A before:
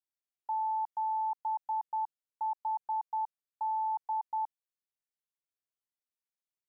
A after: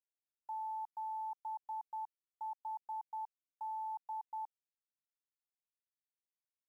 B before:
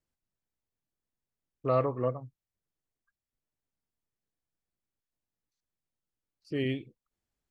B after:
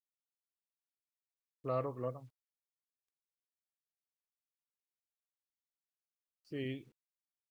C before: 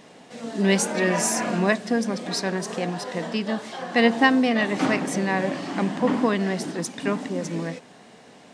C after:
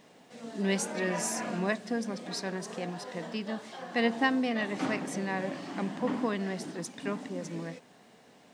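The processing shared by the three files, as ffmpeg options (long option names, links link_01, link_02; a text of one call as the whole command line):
ffmpeg -i in.wav -af "acrusher=bits=10:mix=0:aa=0.000001,volume=-9dB" out.wav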